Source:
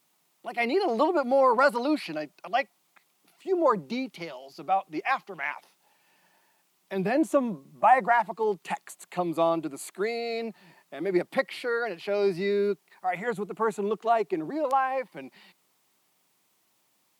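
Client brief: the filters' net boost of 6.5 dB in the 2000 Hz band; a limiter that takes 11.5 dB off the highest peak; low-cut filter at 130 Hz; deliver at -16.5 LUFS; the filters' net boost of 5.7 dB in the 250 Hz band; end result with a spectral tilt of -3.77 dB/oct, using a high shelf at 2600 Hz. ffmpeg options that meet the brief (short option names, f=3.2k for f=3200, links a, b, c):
-af "highpass=130,equalizer=f=250:t=o:g=8,equalizer=f=2k:t=o:g=6.5,highshelf=f=2.6k:g=3.5,volume=11.5dB,alimiter=limit=-6dB:level=0:latency=1"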